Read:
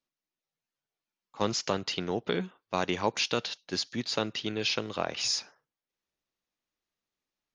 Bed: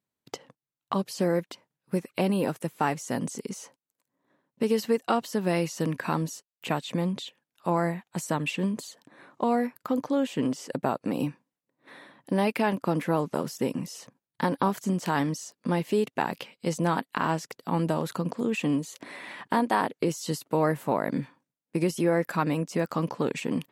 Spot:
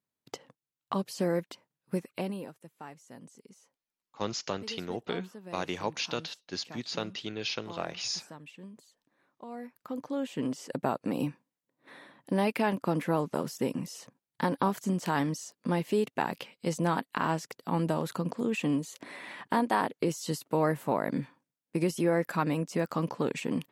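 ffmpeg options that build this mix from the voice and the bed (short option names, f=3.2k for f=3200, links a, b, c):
-filter_complex "[0:a]adelay=2800,volume=-4.5dB[a];[1:a]volume=13.5dB,afade=t=out:st=1.93:d=0.59:silence=0.158489,afade=t=in:st=9.47:d=1.38:silence=0.141254[b];[a][b]amix=inputs=2:normalize=0"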